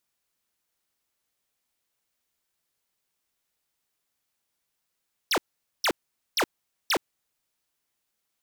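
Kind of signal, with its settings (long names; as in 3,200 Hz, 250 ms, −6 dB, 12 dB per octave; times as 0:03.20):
repeated falling chirps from 6,300 Hz, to 250 Hz, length 0.07 s square, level −23 dB, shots 4, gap 0.46 s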